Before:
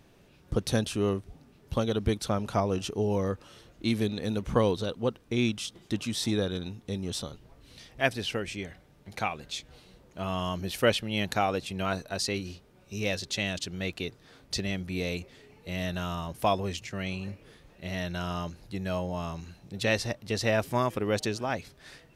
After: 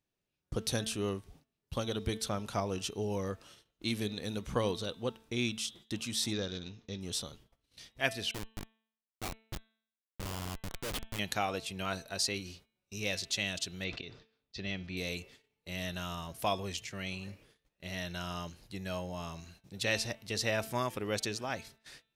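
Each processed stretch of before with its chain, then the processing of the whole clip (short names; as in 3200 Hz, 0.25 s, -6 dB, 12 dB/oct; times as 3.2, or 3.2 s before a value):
6.33–7.01 switching dead time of 0.057 ms + elliptic low-pass 6300 Hz + bell 830 Hz -3.5 dB 0.31 oct
8.31–11.19 low shelf 100 Hz +10 dB + Schmitt trigger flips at -27 dBFS
13.84–14.97 LPF 5100 Hz 24 dB/oct + auto swell 0.102 s + sustainer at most 100 dB/s
whole clip: gate -50 dBFS, range -23 dB; high shelf 2100 Hz +8.5 dB; de-hum 222.2 Hz, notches 18; gain -7.5 dB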